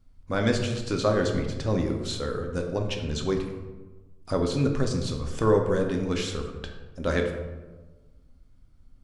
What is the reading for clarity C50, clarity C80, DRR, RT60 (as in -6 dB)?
6.0 dB, 7.5 dB, 2.5 dB, 1.3 s